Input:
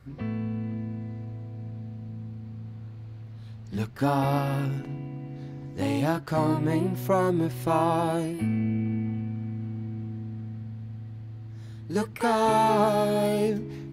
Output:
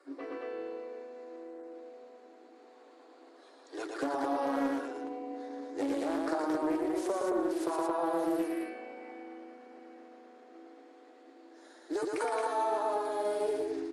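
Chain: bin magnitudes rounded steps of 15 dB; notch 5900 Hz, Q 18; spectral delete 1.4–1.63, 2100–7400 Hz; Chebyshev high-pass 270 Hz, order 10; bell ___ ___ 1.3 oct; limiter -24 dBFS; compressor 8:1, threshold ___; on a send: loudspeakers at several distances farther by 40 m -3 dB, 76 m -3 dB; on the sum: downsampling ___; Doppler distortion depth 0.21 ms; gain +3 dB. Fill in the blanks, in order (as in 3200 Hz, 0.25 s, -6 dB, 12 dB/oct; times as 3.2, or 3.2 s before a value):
2800 Hz, -9.5 dB, -33 dBFS, 22050 Hz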